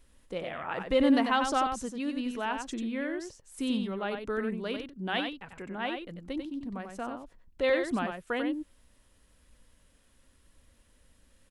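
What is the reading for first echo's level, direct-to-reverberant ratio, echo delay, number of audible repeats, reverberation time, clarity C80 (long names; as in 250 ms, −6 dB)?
−6.0 dB, no reverb audible, 93 ms, 1, no reverb audible, no reverb audible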